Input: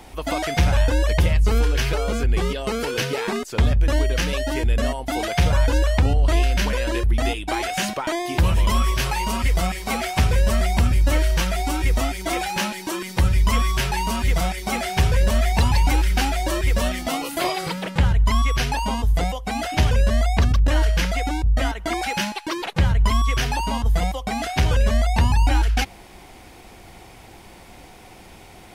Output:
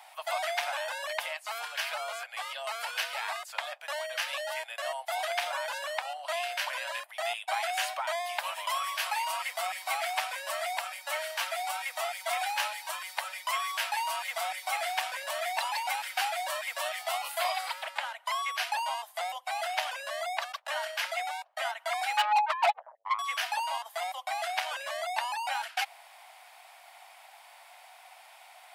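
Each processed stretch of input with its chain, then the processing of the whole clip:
0:22.17–0:23.19: expanding power law on the bin magnitudes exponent 3.2 + mid-hump overdrive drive 33 dB, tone 5,000 Hz, clips at −10.5 dBFS
whole clip: Butterworth high-pass 620 Hz 72 dB per octave; parametric band 6,100 Hz −6 dB 0.51 octaves; level −5 dB

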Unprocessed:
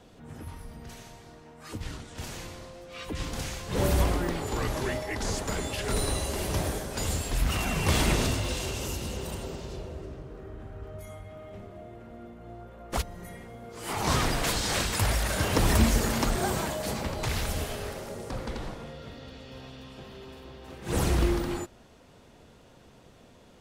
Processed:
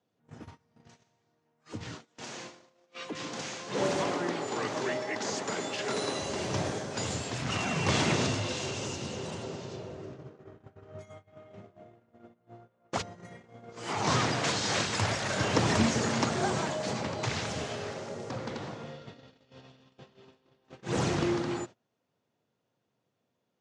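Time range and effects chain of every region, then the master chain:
0:01.94–0:06.19: high-pass filter 220 Hz + delay that swaps between a low-pass and a high-pass 142 ms, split 1,700 Hz, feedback 66%, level −12 dB
whole clip: elliptic band-pass filter 110–6,800 Hz, stop band 40 dB; noise gate −43 dBFS, range −24 dB

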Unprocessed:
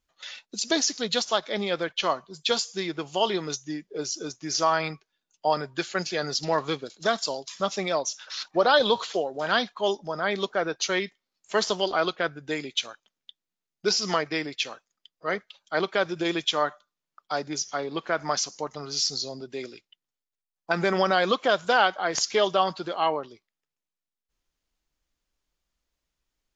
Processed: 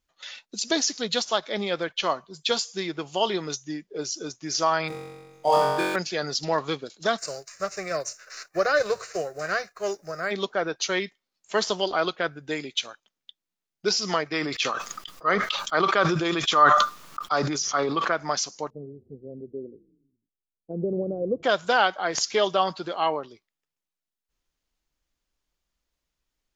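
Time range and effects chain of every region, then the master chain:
0:04.88–0:05.96: running median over 9 samples + flutter between parallel walls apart 3.7 metres, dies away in 1.4 s
0:07.17–0:10.30: spectral envelope flattened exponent 0.6 + phaser with its sweep stopped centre 900 Hz, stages 6
0:14.33–0:18.12: parametric band 1,200 Hz +12 dB 0.35 octaves + level that may fall only so fast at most 32 dB per second
0:18.70–0:21.43: elliptic low-pass filter 510 Hz, stop band 80 dB + echo with shifted repeats 124 ms, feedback 57%, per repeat −32 Hz, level −23 dB
whole clip: no processing

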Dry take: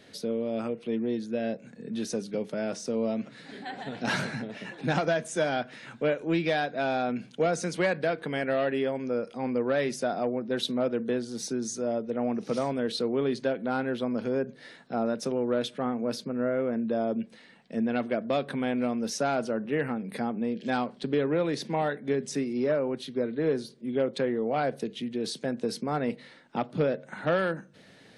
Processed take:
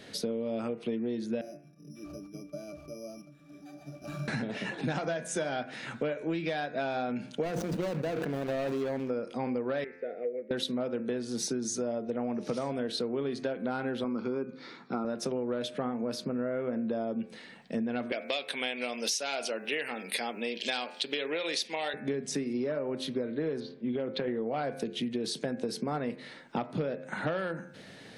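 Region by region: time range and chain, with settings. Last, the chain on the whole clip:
0:01.41–0:04.28: bad sample-rate conversion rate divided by 8×, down none, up zero stuff + resonances in every octave D, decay 0.21 s
0:07.43–0:09.10: running median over 41 samples + level that may fall only so fast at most 25 dB per second
0:09.84–0:10.51: pair of resonant band-passes 980 Hz, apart 2.1 octaves + high-frequency loss of the air 380 metres
0:14.04–0:15.05: loudspeaker in its box 170–5,300 Hz, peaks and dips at 360 Hz +5 dB, 640 Hz −7 dB, 1,300 Hz +5 dB, 1,800 Hz −8 dB, 3,100 Hz −9 dB + comb filter 0.9 ms, depth 36%
0:18.12–0:21.94: high-pass filter 480 Hz + high shelf with overshoot 1,900 Hz +10.5 dB, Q 1.5
0:23.60–0:24.28: low-pass filter 4,300 Hz 24 dB per octave + downward compressor, threshold −27 dBFS
whole clip: hum removal 87.25 Hz, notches 30; downward compressor 10 to 1, threshold −34 dBFS; level +5 dB

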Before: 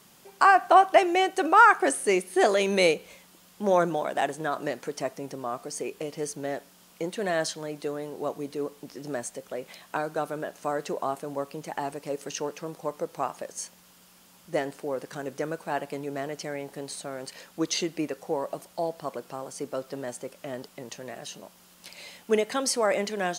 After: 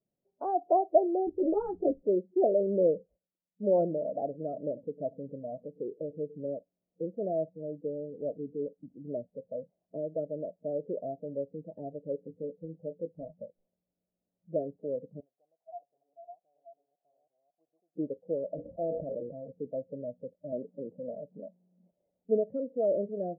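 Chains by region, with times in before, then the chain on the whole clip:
0:01.27–0:02.02: spectral tilt −4 dB per octave + string-ensemble chorus
0:02.94–0:06.41: noise gate −51 dBFS, range −13 dB + single-tap delay 100 ms −17.5 dB
0:12.25–0:14.56: one scale factor per block 5 bits + dynamic equaliser 1,000 Hz, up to −8 dB, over −44 dBFS, Q 0.76 + double-tracking delay 18 ms −8.5 dB
0:15.20–0:17.96: delay that plays each chunk backwards 415 ms, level −1 dB + formant resonators in series a
0:18.54–0:19.52: mains-hum notches 60/120/180/240/300/360/420/480/540 Hz + level that may fall only so fast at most 28 dB per second
0:20.52–0:21.91: mu-law and A-law mismatch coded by mu + high-pass filter 270 Hz + low-shelf EQ 440 Hz +9 dB
whole clip: elliptic low-pass filter 640 Hz, stop band 80 dB; parametric band 230 Hz −4 dB 1.7 octaves; noise reduction from a noise print of the clip's start 23 dB

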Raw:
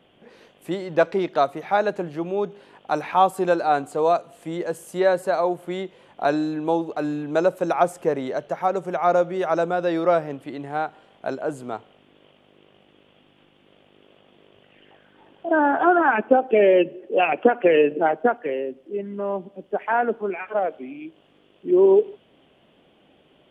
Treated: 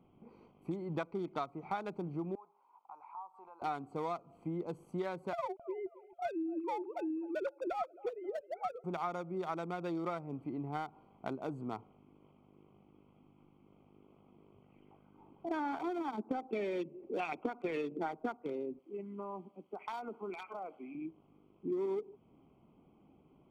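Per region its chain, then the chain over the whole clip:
0:02.35–0:03.62: resonant band-pass 940 Hz, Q 4.7 + spectral tilt +4.5 dB per octave + downward compressor 2.5 to 1, threshold −43 dBFS
0:05.33–0:08.84: three sine waves on the formant tracks + repeating echo 266 ms, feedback 37%, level −20 dB
0:15.81–0:16.29: resonant band-pass 310 Hz, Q 0.67 + high-frequency loss of the air 190 metres
0:18.79–0:20.95: spectral tilt +4 dB per octave + downward compressor 5 to 1, threshold −28 dBFS + noise that follows the level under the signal 32 dB
whole clip: adaptive Wiener filter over 25 samples; comb filter 0.9 ms, depth 63%; downward compressor 6 to 1, threshold −29 dBFS; level −5.5 dB

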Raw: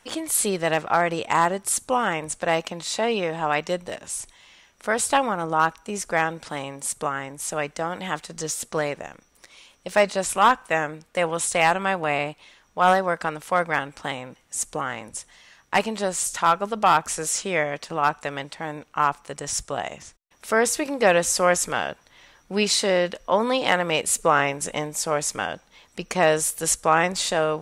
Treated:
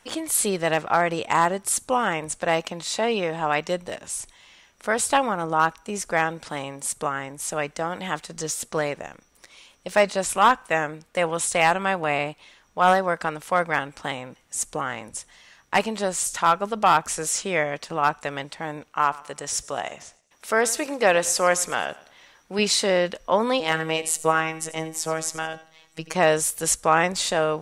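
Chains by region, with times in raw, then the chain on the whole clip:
0:18.89–0:22.59: low-shelf EQ 200 Hz −8.5 dB + repeating echo 108 ms, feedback 38%, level −20 dB
0:23.60–0:26.14: phases set to zero 160 Hz + repeating echo 85 ms, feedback 31%, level −15.5 dB
whole clip: no processing

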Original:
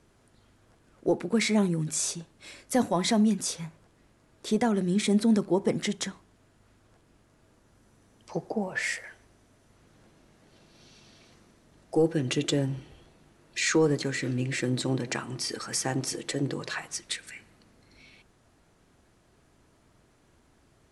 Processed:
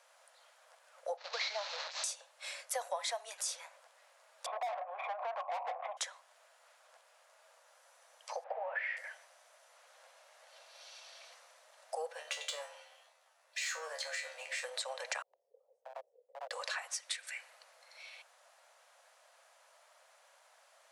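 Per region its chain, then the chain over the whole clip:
0:01.17–0:02.04: linear delta modulator 32 kbit/s, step −29.5 dBFS + downward expander −28 dBFS + parametric band 4,200 Hz +9 dB 0.34 octaves
0:04.46–0:05.97: formant resonators in series a + mid-hump overdrive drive 34 dB, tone 1,900 Hz, clips at −23.5 dBFS
0:08.44–0:08.97: mu-law and A-law mismatch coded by mu + low-pass filter 2,500 Hz 24 dB per octave
0:12.12–0:14.64: leveller curve on the samples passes 1 + tuned comb filter 76 Hz, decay 0.28 s, mix 90%
0:15.22–0:16.51: inverse Chebyshev low-pass filter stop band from 1,400 Hz, stop band 70 dB + hard clipping −29.5 dBFS
whole clip: Butterworth high-pass 520 Hz 96 dB per octave; downward compressor 3 to 1, threshold −42 dBFS; level +3.5 dB

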